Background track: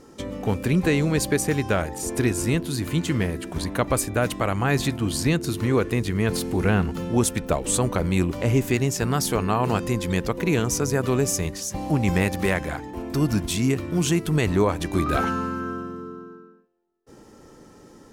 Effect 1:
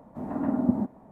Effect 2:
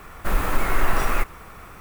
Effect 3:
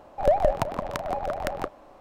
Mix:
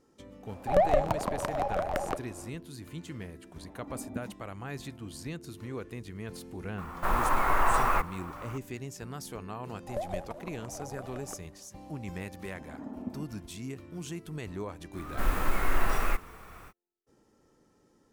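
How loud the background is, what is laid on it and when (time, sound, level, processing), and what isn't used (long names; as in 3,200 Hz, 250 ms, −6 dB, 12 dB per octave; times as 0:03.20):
background track −17.5 dB
0:00.49: mix in 3 −1 dB + soft clipping −12 dBFS
0:03.47: mix in 1 −13.5 dB + spectral dynamics exaggerated over time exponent 1.5
0:06.78: mix in 2 −9 dB + parametric band 970 Hz +13 dB 1.3 octaves
0:09.69: mix in 3 −14.5 dB + variable-slope delta modulation 64 kbit/s
0:12.38: mix in 1 −15 dB
0:14.93: mix in 2 −5.5 dB, fades 0.05 s + harmonic and percussive parts rebalanced percussive −3 dB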